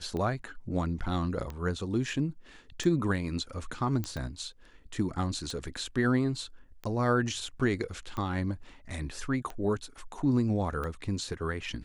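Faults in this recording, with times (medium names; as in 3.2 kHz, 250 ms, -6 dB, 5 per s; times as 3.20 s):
tick 45 rpm -24 dBFS
4.04 s: pop -19 dBFS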